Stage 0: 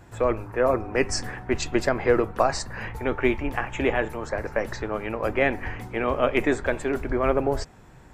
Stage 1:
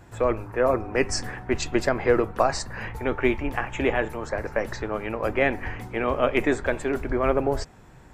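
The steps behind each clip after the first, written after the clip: nothing audible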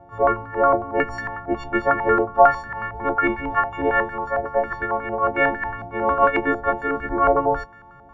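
frequency quantiser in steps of 4 st; stepped low-pass 11 Hz 740–1600 Hz; gain -1 dB

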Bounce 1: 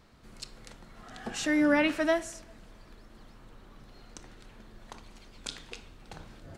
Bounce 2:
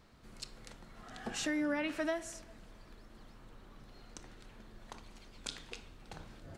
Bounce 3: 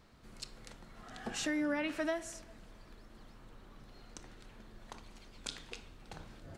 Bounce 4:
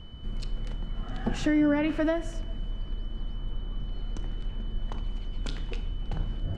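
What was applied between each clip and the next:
compressor 4:1, threshold -29 dBFS, peak gain reduction 8.5 dB; gain -3 dB
nothing audible
RIAA curve playback; whine 3000 Hz -59 dBFS; gain +6 dB

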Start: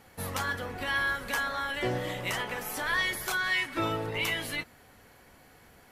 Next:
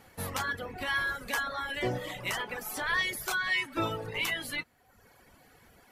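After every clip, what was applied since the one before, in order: reverb removal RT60 1 s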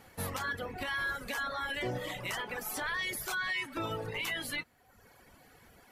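limiter -26.5 dBFS, peak gain reduction 9.5 dB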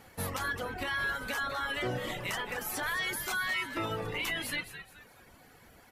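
frequency-shifting echo 0.214 s, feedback 35%, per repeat -140 Hz, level -11 dB; gain +1.5 dB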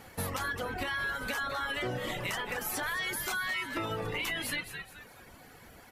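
compressor 3:1, threshold -36 dBFS, peak gain reduction 5.5 dB; gain +4 dB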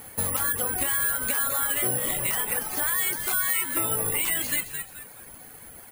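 careless resampling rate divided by 4×, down filtered, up zero stuff; gain +2.5 dB

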